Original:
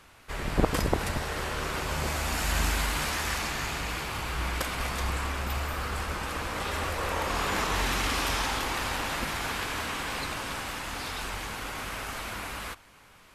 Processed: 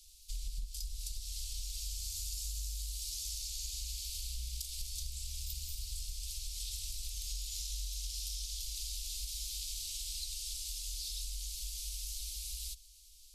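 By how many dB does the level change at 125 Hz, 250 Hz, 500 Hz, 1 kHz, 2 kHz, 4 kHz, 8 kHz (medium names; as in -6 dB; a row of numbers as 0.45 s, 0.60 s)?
-12.5 dB, under -40 dB, under -40 dB, under -40 dB, -29.5 dB, -6.5 dB, -1.5 dB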